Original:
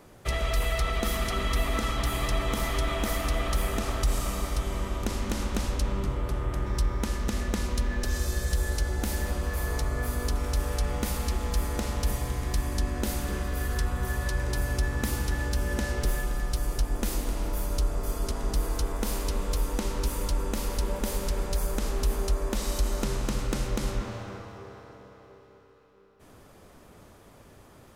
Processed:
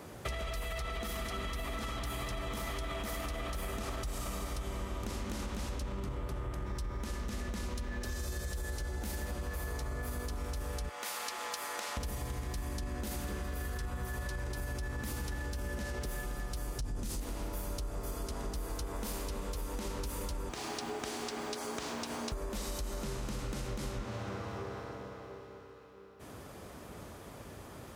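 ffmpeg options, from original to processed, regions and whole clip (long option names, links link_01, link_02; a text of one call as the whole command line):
ffmpeg -i in.wav -filter_complex "[0:a]asettb=1/sr,asplit=3[link_01][link_02][link_03];[link_01]atrim=end=10.894[link_04];[link_02]atrim=start=10.89:end=11.97,asetpts=PTS-STARTPTS,afade=type=in:duration=0.004:curve=qsin,afade=type=out:start_time=1.076:duration=0.004:curve=qsin,highpass=840,highshelf=frequency=8000:gain=-6[link_05];[link_03]atrim=start=11.966[link_06];[link_04][link_05]acrossfade=duration=0.004:curve1=hsin:curve2=qsin[link_07];[link_07][link_06]acrossfade=duration=0.004:curve1=qsin:curve2=hsin,asettb=1/sr,asplit=3[link_08][link_09][link_10];[link_08]atrim=end=16.794[link_11];[link_09]atrim=start=16.79:end=17.2,asetpts=PTS-STARTPTS,afade=type=in:duration=0.004:curve=qsin,afade=type=out:start_time=0.406:duration=0.004:curve=qsin,bass=frequency=250:gain=11,treble=frequency=4000:gain=11,asplit=2[link_12][link_13];[link_13]adelay=33,volume=-12.5dB[link_14];[link_12][link_14]amix=inputs=2:normalize=0,atrim=end_sample=18081,adynamicsmooth=sensitivity=7:basefreq=5700[link_15];[link_10]atrim=start=17.196[link_16];[link_11][link_15]acrossfade=duration=0.004:curve1=hsin:curve2=qsin[link_17];[link_17][link_16]acrossfade=duration=0.004:curve1=qsin:curve2=hsin,asettb=1/sr,asplit=3[link_18][link_19][link_20];[link_18]atrim=end=20.494[link_21];[link_19]atrim=start=20.49:end=22.32,asetpts=PTS-STARTPTS,afade=type=in:duration=0.004:curve=qsin,afade=type=out:start_time=1.826:duration=0.004:curve=qsin,highpass=520,lowpass=6600,aeval=exprs='val(0)*gte(abs(val(0)),0.00335)':channel_layout=same,afreqshift=-160[link_22];[link_20]atrim=start=22.316[link_23];[link_21][link_22]acrossfade=duration=0.004:curve1=hsin:curve2=qsin[link_24];[link_24][link_23]acrossfade=duration=0.004:curve1=qsin:curve2=hsin,highpass=frequency=43:width=0.5412,highpass=frequency=43:width=1.3066,alimiter=limit=-22.5dB:level=0:latency=1:release=17,acompressor=threshold=-40dB:ratio=6,volume=4.5dB" out.wav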